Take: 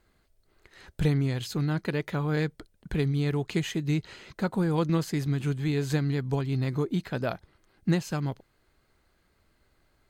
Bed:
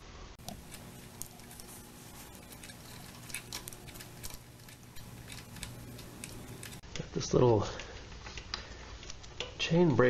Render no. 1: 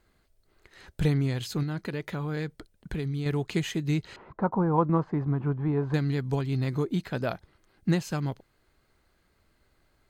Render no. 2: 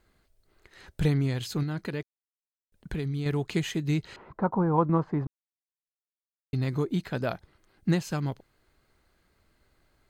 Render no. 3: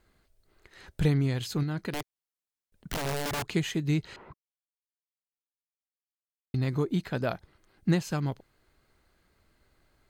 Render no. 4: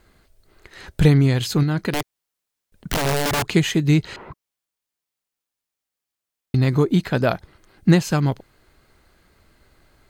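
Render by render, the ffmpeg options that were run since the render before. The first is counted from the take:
ffmpeg -i in.wav -filter_complex "[0:a]asettb=1/sr,asplit=3[link_01][link_02][link_03];[link_01]atrim=end=1.634[link_04];[link_02]atrim=start=1.63:end=3.26,asetpts=PTS-STARTPTS,afade=type=in:duration=0.004:curve=qsin,afade=type=out:start_time=1.626:duration=0.004:curve=qsin,acompressor=threshold=-29dB:ratio=2.5:attack=3.2:release=140:knee=1:detection=peak[link_05];[link_03]atrim=start=3.256[link_06];[link_04][link_05]acrossfade=duration=0.004:curve1=hsin:curve2=qsin[link_07];[link_07][link_06]acrossfade=duration=0.004:curve1=qsin:curve2=hsin,asettb=1/sr,asplit=3[link_08][link_09][link_10];[link_08]atrim=end=4.164[link_11];[link_09]atrim=start=4.16:end=5.94,asetpts=PTS-STARTPTS,afade=type=in:duration=0.004:curve=qsin,afade=type=out:start_time=1.776:duration=0.004:curve=qsin,lowpass=frequency=1000:width_type=q:width=2.9[link_12];[link_10]atrim=start=5.936[link_13];[link_11][link_12]acrossfade=duration=0.004:curve1=hsin:curve2=qsin[link_14];[link_14][link_13]acrossfade=duration=0.004:curve1=qsin:curve2=hsin" out.wav
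ffmpeg -i in.wav -filter_complex "[0:a]asplit=5[link_01][link_02][link_03][link_04][link_05];[link_01]atrim=end=2.03,asetpts=PTS-STARTPTS,afade=type=out:start_time=2.026:duration=0.004:curve=hsin[link_06];[link_02]atrim=start=2.03:end=2.72,asetpts=PTS-STARTPTS,volume=0[link_07];[link_03]atrim=start=2.72:end=5.27,asetpts=PTS-STARTPTS,afade=type=in:duration=0.004:curve=hsin,afade=type=out:start_time=2.546:duration=0.004:curve=hsin[link_08];[link_04]atrim=start=5.27:end=6.53,asetpts=PTS-STARTPTS,volume=0[link_09];[link_05]atrim=start=6.53,asetpts=PTS-STARTPTS,afade=type=in:duration=0.004:curve=hsin[link_10];[link_06][link_07][link_08][link_09][link_10]concat=n=5:v=0:a=1" out.wav
ffmpeg -i in.wav -filter_complex "[0:a]asettb=1/sr,asplit=3[link_01][link_02][link_03];[link_01]atrim=end=1.924[link_04];[link_02]atrim=start=1.92:end=3.45,asetpts=PTS-STARTPTS,afade=type=in:duration=0.004:curve=qsin,afade=type=out:start_time=1.526:duration=0.004:curve=qsin,aeval=exprs='(mod(21.1*val(0)+1,2)-1)/21.1':channel_layout=same[link_05];[link_03]atrim=start=3.446[link_06];[link_04][link_05]acrossfade=duration=0.004:curve1=hsin:curve2=qsin[link_07];[link_07][link_06]acrossfade=duration=0.004:curve1=qsin:curve2=hsin,asplit=3[link_08][link_09][link_10];[link_08]atrim=end=4.34,asetpts=PTS-STARTPTS,afade=type=out:start_time=4.336:duration=0.004:curve=hsin[link_11];[link_09]atrim=start=4.34:end=6.54,asetpts=PTS-STARTPTS,volume=0[link_12];[link_10]atrim=start=6.54,asetpts=PTS-STARTPTS,afade=type=in:duration=0.004:curve=hsin[link_13];[link_11][link_12][link_13]concat=n=3:v=0:a=1" out.wav
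ffmpeg -i in.wav -af "volume=10.5dB" out.wav

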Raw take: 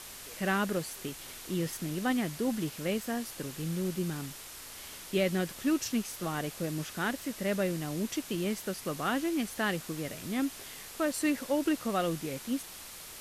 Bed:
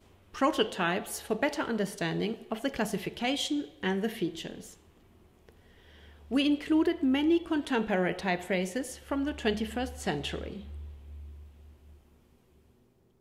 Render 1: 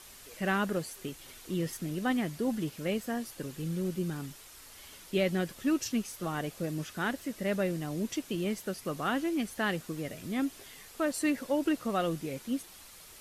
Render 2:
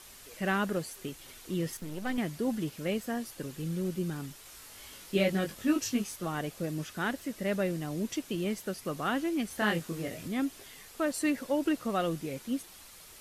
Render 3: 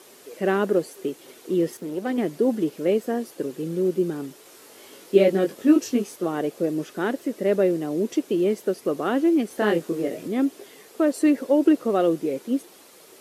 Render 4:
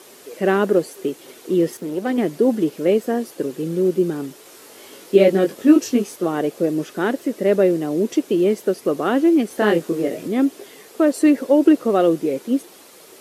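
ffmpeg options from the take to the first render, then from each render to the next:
ffmpeg -i in.wav -af "afftdn=noise_reduction=7:noise_floor=-46" out.wav
ffmpeg -i in.wav -filter_complex "[0:a]asettb=1/sr,asplit=3[link_01][link_02][link_03];[link_01]atrim=end=1.774[link_04];[link_02]atrim=start=1.77:end=2.18,asetpts=PTS-STARTPTS,afade=type=in:duration=0.004:curve=qsin,afade=type=out:start_time=0.406:duration=0.004:curve=qsin,aeval=exprs='if(lt(val(0),0),0.251*val(0),val(0))':channel_layout=same[link_05];[link_03]atrim=start=2.176[link_06];[link_04][link_05]acrossfade=duration=0.004:curve1=hsin:curve2=qsin[link_07];[link_07][link_06]acrossfade=duration=0.004:curve1=qsin:curve2=hsin,asettb=1/sr,asplit=3[link_08][link_09][link_10];[link_08]atrim=end=4.434[link_11];[link_09]atrim=start=4.43:end=6.16,asetpts=PTS-STARTPTS,afade=type=in:duration=0.004:curve=qsin,afade=type=out:start_time=1.726:duration=0.004:curve=qsin,asplit=2[link_12][link_13];[link_13]adelay=20,volume=-3dB[link_14];[link_12][link_14]amix=inputs=2:normalize=0,atrim=end_sample=76293[link_15];[link_10]atrim=start=6.156[link_16];[link_11][link_15]acrossfade=duration=0.004:curve1=hsin:curve2=qsin[link_17];[link_17][link_16]acrossfade=duration=0.004:curve1=qsin:curve2=hsin,asettb=1/sr,asplit=3[link_18][link_19][link_20];[link_18]atrim=end=9.484[link_21];[link_19]atrim=start=9.48:end=10.28,asetpts=PTS-STARTPTS,afade=type=in:duration=0.004:curve=qsin,afade=type=out:start_time=0.796:duration=0.004:curve=qsin,asplit=2[link_22][link_23];[link_23]adelay=24,volume=-2.5dB[link_24];[link_22][link_24]amix=inputs=2:normalize=0,atrim=end_sample=35280[link_25];[link_20]atrim=start=10.276[link_26];[link_21][link_25]acrossfade=duration=0.004:curve1=hsin:curve2=qsin[link_27];[link_27][link_26]acrossfade=duration=0.004:curve1=qsin:curve2=hsin" out.wav
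ffmpeg -i in.wav -af "highpass=180,equalizer=frequency=400:width_type=o:width=1.6:gain=15" out.wav
ffmpeg -i in.wav -af "volume=4.5dB,alimiter=limit=-2dB:level=0:latency=1" out.wav

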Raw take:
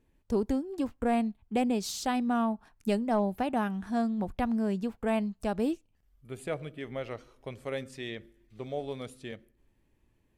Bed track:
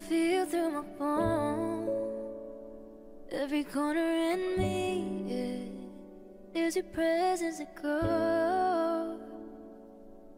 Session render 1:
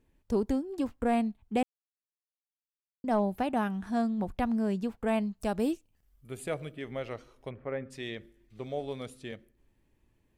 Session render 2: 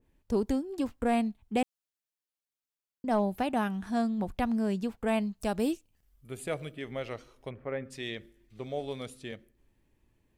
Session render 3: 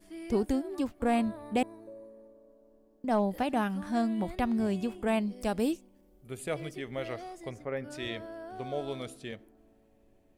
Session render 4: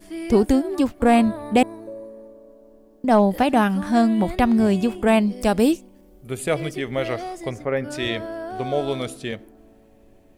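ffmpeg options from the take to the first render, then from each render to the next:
ffmpeg -i in.wav -filter_complex "[0:a]asettb=1/sr,asplit=3[link_01][link_02][link_03];[link_01]atrim=end=5.414[link_04];[link_02]atrim=start=5.41:end=6.74,asetpts=PTS-STARTPTS,afade=type=in:duration=0.004:curve=qsin,afade=type=out:start_time=1.326:duration=0.004:curve=qsin,highshelf=frequency=7400:gain=7.5[link_05];[link_03]atrim=start=6.736[link_06];[link_04][link_05]acrossfade=duration=0.004:curve1=hsin:curve2=qsin[link_07];[link_07][link_06]acrossfade=duration=0.004:curve1=qsin:curve2=hsin,asplit=3[link_08][link_09][link_10];[link_08]afade=type=out:start_time=7.49:duration=0.02[link_11];[link_09]lowpass=frequency=2000:width=0.5412,lowpass=frequency=2000:width=1.3066,afade=type=in:start_time=7.49:duration=0.02,afade=type=out:start_time=7.9:duration=0.02[link_12];[link_10]afade=type=in:start_time=7.9:duration=0.02[link_13];[link_11][link_12][link_13]amix=inputs=3:normalize=0,asplit=3[link_14][link_15][link_16];[link_14]atrim=end=1.63,asetpts=PTS-STARTPTS,afade=type=out:start_time=1.626:duration=0.004:curve=hsin[link_17];[link_15]atrim=start=1.63:end=3.04,asetpts=PTS-STARTPTS,volume=0[link_18];[link_16]atrim=start=3.04,asetpts=PTS-STARTPTS,afade=type=in:duration=0.004:curve=hsin[link_19];[link_17][link_18][link_19]concat=n=3:v=0:a=1" out.wav
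ffmpeg -i in.wav -af "adynamicequalizer=threshold=0.00631:dfrequency=2100:dqfactor=0.7:tfrequency=2100:tqfactor=0.7:attack=5:release=100:ratio=0.375:range=2:mode=boostabove:tftype=highshelf" out.wav
ffmpeg -i in.wav -i bed.wav -filter_complex "[1:a]volume=-15dB[link_01];[0:a][link_01]amix=inputs=2:normalize=0" out.wav
ffmpeg -i in.wav -af "volume=11.5dB" out.wav

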